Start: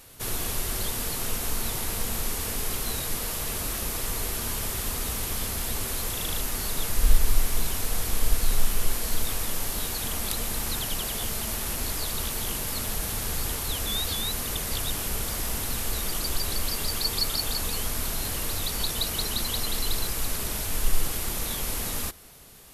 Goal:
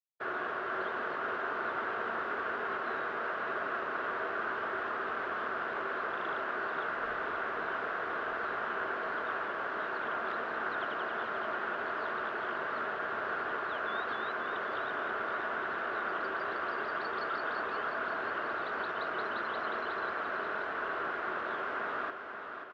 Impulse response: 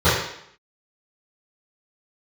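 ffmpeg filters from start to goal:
-af "equalizer=f=1.4k:w=3.8:g=11,acrusher=bits=4:mix=0:aa=0.5,highpass=340,equalizer=f=380:t=q:w=4:g=8,equalizer=f=640:t=q:w=4:g=8,equalizer=f=1.1k:t=q:w=4:g=7,equalizer=f=1.6k:t=q:w=4:g=7,equalizer=f=2.3k:t=q:w=4:g=-5,lowpass=f=2.4k:w=0.5412,lowpass=f=2.4k:w=1.3066,aecho=1:1:534|1068|1602|2136|2670|3204|3738:0.398|0.219|0.12|0.0662|0.0364|0.02|0.011,volume=-5dB"

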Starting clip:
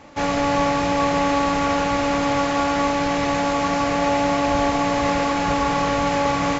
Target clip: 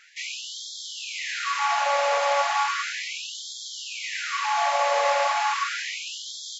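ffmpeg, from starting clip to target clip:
-af "afftfilt=real='re*gte(b*sr/1024,470*pow(3200/470,0.5+0.5*sin(2*PI*0.35*pts/sr)))':imag='im*gte(b*sr/1024,470*pow(3200/470,0.5+0.5*sin(2*PI*0.35*pts/sr)))':win_size=1024:overlap=0.75"

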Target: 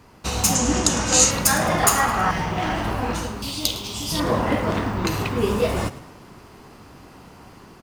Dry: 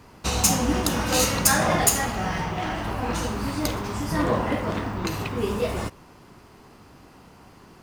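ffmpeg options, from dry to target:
-filter_complex "[0:a]asettb=1/sr,asplit=3[a][b][c];[a]atrim=end=3.424[d];[b]atrim=start=3.42:end=4.2,asetpts=PTS-STARTPTS,afade=t=in:d=0.004:c=qsin,afade=t=out:st=0.776:d=0.004:c=qsin,highshelf=f=2.4k:t=q:w=3:g=11[e];[c]atrim=start=4.196[f];[d][e]acrossfade=d=0.004:c1=hsin:c2=qsin[g];[g][f]acrossfade=d=0.004:c1=qsin:c2=hsin,asplit=2[h][i];[i]asplit=4[j][k][l][m];[j]adelay=107,afreqshift=33,volume=-16.5dB[n];[k]adelay=214,afreqshift=66,volume=-24dB[o];[l]adelay=321,afreqshift=99,volume=-31.6dB[p];[m]adelay=428,afreqshift=132,volume=-39.1dB[q];[n][o][p][q]amix=inputs=4:normalize=0[r];[h][r]amix=inputs=2:normalize=0,dynaudnorm=f=100:g=11:m=5.5dB,asettb=1/sr,asplit=3[s][t][u];[s]atrim=end=0.554[v];[t]atrim=start=0.55:end=1.31,asetpts=PTS-STARTPTS,afade=t=in:d=0.004:c=qsin,afade=t=out:st=0.756:d=0.004:c=qsin,lowpass=f=7.2k:t=q:w=4.1[w];[u]atrim=start=1.306[x];[v][w]acrossfade=d=0.004:c1=hsin:c2=qsin[y];[y][x]acrossfade=d=0.004:c1=qsin:c2=hsin,asettb=1/sr,asplit=3[z][aa][ab];[z]atrim=end=1.834[ac];[aa]atrim=start=1.83:end=2.31,asetpts=PTS-STARTPTS,afade=t=in:d=0.004:c=qsin,afade=t=out:st=0.476:d=0.004:c=qsin,equalizer=f=1.2k:t=o:w=1:g=12.5[ad];[ab]atrim=start=2.306[ae];[ac][ad]acrossfade=d=0.004:c1=hsin:c2=qsin[af];[af][ae]acrossfade=d=0.004:c1=qsin:c2=hsin,volume=-1dB"

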